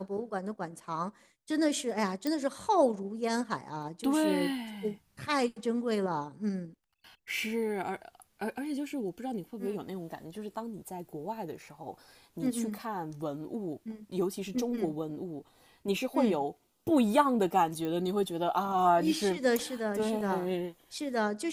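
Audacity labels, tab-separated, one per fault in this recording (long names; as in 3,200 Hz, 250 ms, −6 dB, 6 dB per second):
2.270000	2.270000	click −19 dBFS
17.850000	17.850000	click −24 dBFS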